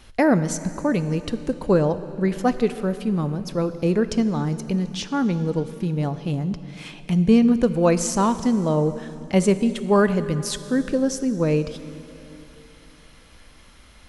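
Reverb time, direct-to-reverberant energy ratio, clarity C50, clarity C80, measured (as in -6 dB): 3.0 s, 12.0 dB, 13.0 dB, 13.5 dB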